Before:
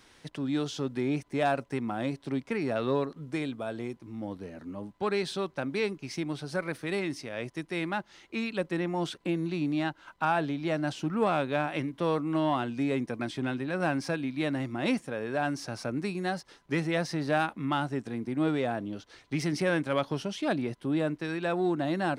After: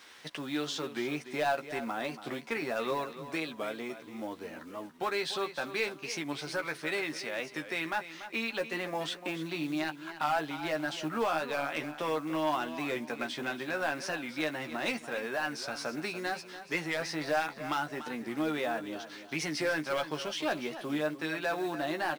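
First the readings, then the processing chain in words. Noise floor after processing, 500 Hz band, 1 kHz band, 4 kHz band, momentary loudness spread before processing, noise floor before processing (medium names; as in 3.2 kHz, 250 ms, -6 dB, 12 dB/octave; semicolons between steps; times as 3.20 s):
-50 dBFS, -3.0 dB, -1.5 dB, +2.0 dB, 8 LU, -61 dBFS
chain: high-pass 1 kHz 6 dB/octave; treble shelf 7.7 kHz -9.5 dB; in parallel at +1.5 dB: compression 12:1, threshold -42 dBFS, peak gain reduction 17 dB; on the sum: hard clipper -24 dBFS, distortion -17 dB; companded quantiser 6-bit; doubling 13 ms -6 dB; feedback delay 289 ms, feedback 31%, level -12.5 dB; warped record 45 rpm, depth 100 cents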